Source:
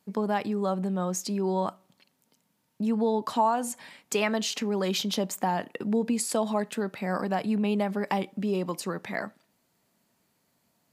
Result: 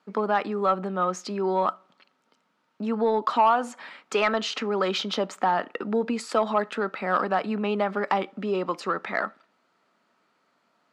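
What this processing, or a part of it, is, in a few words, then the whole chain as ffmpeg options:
intercom: -af "highpass=300,lowpass=3700,equalizer=f=1300:t=o:w=0.35:g=11.5,asoftclip=type=tanh:threshold=0.178,volume=1.68"

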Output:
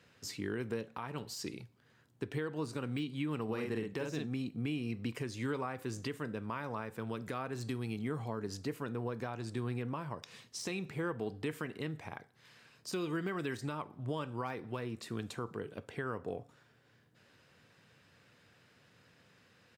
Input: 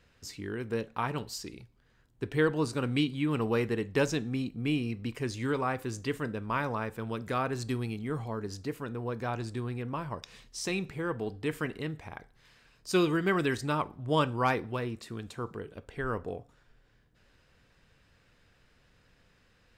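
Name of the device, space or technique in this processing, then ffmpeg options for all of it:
podcast mastering chain: -filter_complex "[0:a]asplit=3[s0][s1][s2];[s0]afade=t=out:st=3.48:d=0.02[s3];[s1]asplit=2[s4][s5];[s5]adelay=46,volume=0.631[s6];[s4][s6]amix=inputs=2:normalize=0,afade=t=in:st=3.48:d=0.02,afade=t=out:st=4.25:d=0.02[s7];[s2]afade=t=in:st=4.25:d=0.02[s8];[s3][s7][s8]amix=inputs=3:normalize=0,highpass=f=100:w=0.5412,highpass=f=100:w=1.3066,deesser=0.95,acompressor=threshold=0.0224:ratio=2.5,alimiter=level_in=1.5:limit=0.0631:level=0:latency=1:release=464,volume=0.668,volume=1.26" -ar 48000 -c:a libmp3lame -b:a 96k

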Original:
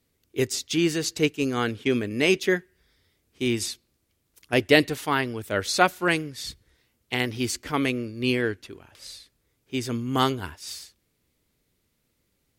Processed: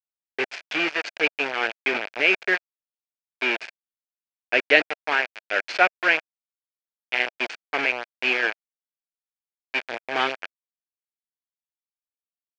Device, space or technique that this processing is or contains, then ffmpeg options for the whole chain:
hand-held game console: -af "acrusher=bits=3:mix=0:aa=0.000001,highpass=470,equalizer=f=650:t=q:w=4:g=4,equalizer=f=1100:t=q:w=4:g=-5,equalizer=f=1600:t=q:w=4:g=7,equalizer=f=2400:t=q:w=4:g=10,equalizer=f=3800:t=q:w=4:g=-6,lowpass=f=4300:w=0.5412,lowpass=f=4300:w=1.3066,volume=0.891"

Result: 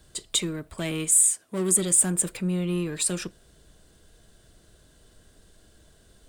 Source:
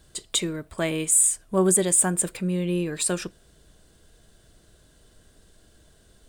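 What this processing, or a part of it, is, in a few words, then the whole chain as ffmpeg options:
one-band saturation: -filter_complex "[0:a]acrossover=split=310|2300[s0][s1][s2];[s1]asoftclip=type=tanh:threshold=0.0211[s3];[s0][s3][s2]amix=inputs=3:normalize=0,asettb=1/sr,asplit=3[s4][s5][s6];[s4]atrim=end=1.184[s7];[s5]atrim=start=1.18:end=1.75,asetpts=PTS-STARTPTS,afade=t=in:d=0.004:c=qsin,afade=t=out:st=0.566:d=0.004:c=qsin,highpass=220[s8];[s6]atrim=start=1.746[s9];[s7][s8]acrossfade=d=0.004:c1=hsin:c2=qsin[s10];[s10][s9]acrossfade=d=0.004:c1=qsin:c2=hsin"

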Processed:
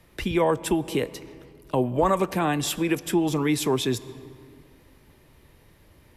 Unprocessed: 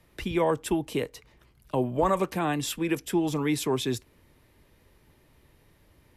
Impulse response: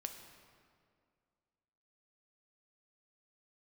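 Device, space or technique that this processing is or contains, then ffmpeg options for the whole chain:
ducked reverb: -filter_complex "[0:a]asplit=3[s0][s1][s2];[1:a]atrim=start_sample=2205[s3];[s1][s3]afir=irnorm=-1:irlink=0[s4];[s2]apad=whole_len=272071[s5];[s4][s5]sidechaincompress=threshold=0.0355:ratio=8:attack=16:release=247,volume=0.708[s6];[s0][s6]amix=inputs=2:normalize=0,volume=1.19"

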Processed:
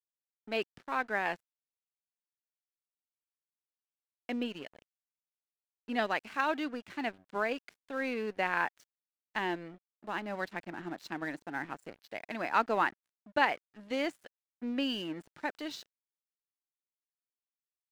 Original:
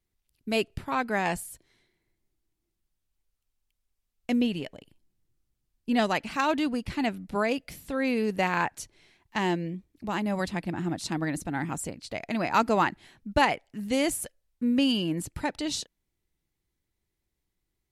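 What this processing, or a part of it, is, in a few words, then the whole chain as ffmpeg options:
pocket radio on a weak battery: -af "highpass=290,lowpass=3900,aeval=exprs='sgn(val(0))*max(abs(val(0))-0.00473,0)':c=same,equalizer=f=1600:t=o:w=0.48:g=5,volume=0.562"

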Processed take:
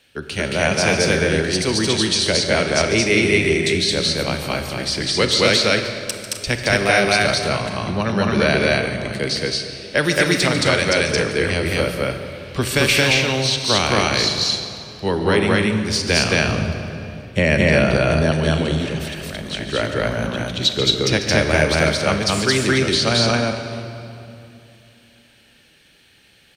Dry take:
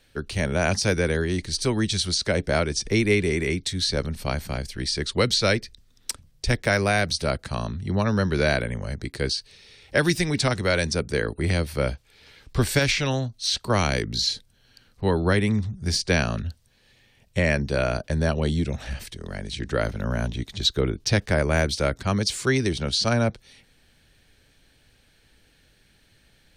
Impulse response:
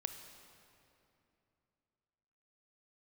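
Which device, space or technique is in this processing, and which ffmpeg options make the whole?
stadium PA: -filter_complex "[0:a]highpass=f=170:p=1,equalizer=f=2800:t=o:w=0.52:g=6.5,aecho=1:1:145.8|221.6|259.5:0.251|1|0.282[s0];[1:a]atrim=start_sample=2205[s1];[s0][s1]afir=irnorm=-1:irlink=0,asettb=1/sr,asplit=3[s2][s3][s4];[s2]atrim=end=16.484[s5];[s3]atrim=start=16.48:end=18.32,asetpts=PTS-STARTPTS,afade=t=in:d=0.004:c=qsin,afade=t=out:st=1.836:d=0.004:c=qsin,lowshelf=f=460:g=6[s6];[s4]atrim=start=18.316[s7];[s5][s6]acrossfade=d=0.004:c1=hsin:c2=qsin[s8];[s8][s7]acrossfade=d=0.004:c1=qsin:c2=hsin,volume=1.68"

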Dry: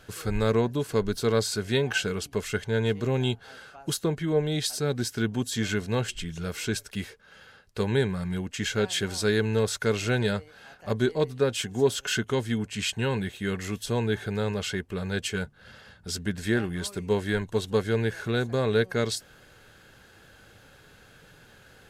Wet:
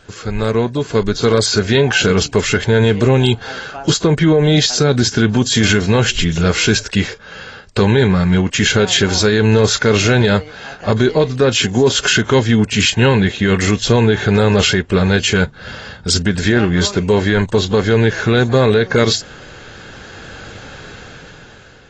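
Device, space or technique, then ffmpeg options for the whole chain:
low-bitrate web radio: -af "dynaudnorm=f=510:g=5:m=5.62,alimiter=limit=0.299:level=0:latency=1:release=50,volume=2.11" -ar 24000 -c:a aac -b:a 24k

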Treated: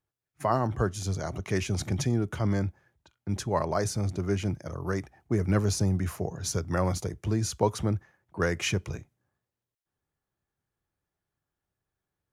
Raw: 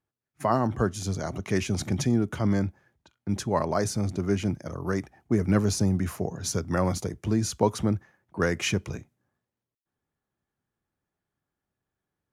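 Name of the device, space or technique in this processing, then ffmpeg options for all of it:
low shelf boost with a cut just above: -af "lowshelf=f=95:g=5,equalizer=f=230:t=o:w=0.69:g=-5.5,volume=0.841"

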